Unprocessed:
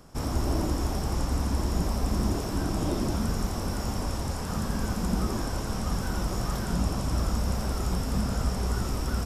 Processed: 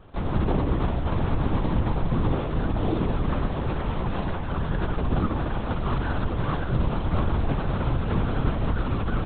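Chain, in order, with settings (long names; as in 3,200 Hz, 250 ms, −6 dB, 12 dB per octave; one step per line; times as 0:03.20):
linear-prediction vocoder at 8 kHz whisper
level +3.5 dB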